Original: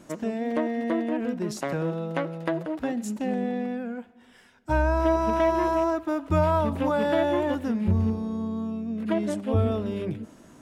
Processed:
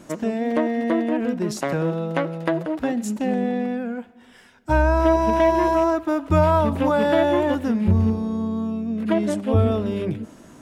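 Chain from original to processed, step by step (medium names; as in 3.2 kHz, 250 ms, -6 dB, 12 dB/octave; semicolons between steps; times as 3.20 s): 5.13–5.75 s: band-stop 1.3 kHz, Q 14; trim +5 dB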